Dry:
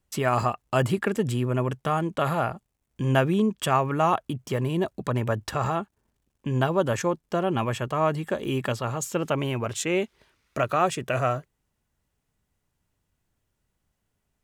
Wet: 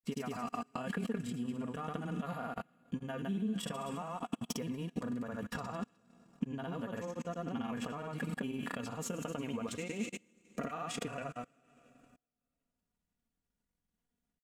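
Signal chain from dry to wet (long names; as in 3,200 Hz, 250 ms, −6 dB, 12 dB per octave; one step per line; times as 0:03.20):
in parallel at −8 dB: dead-zone distortion −43 dBFS
on the sum: downward compressor 5 to 1, threshold −24 dBFS, peak gain reduction 10.5 dB
tuned comb filter 240 Hz, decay 0.38 s, harmonics odd, mix 50%
delay with a high-pass on its return 85 ms, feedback 62%, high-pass 1,900 Hz, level −9.5 dB
granular cloud, pitch spread up and down by 0 semitones
on a send at −20 dB: octave-band graphic EQ 250/1,000/8,000 Hz +6/−5/+8 dB + convolution reverb RT60 2.3 s, pre-delay 149 ms
on the sum: output level in coarse steps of 24 dB
parametric band 200 Hz +5.5 dB 1.2 octaves
comb filter 4.2 ms, depth 59%
transient designer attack +4 dB, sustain −6 dB
level +6 dB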